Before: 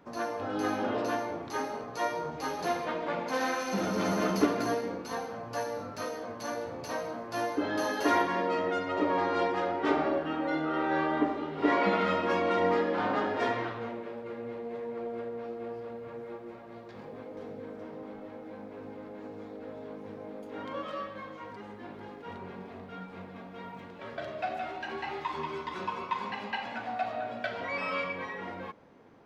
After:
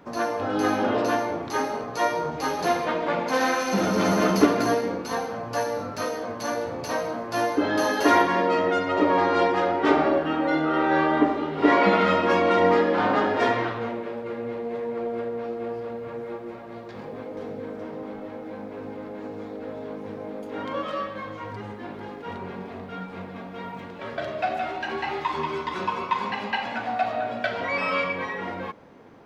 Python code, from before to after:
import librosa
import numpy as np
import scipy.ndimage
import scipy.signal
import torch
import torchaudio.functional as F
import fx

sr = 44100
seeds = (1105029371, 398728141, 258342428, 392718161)

y = fx.peak_eq(x, sr, hz=110.0, db=14.5, octaves=0.23, at=(21.26, 21.73))
y = F.gain(torch.from_numpy(y), 7.5).numpy()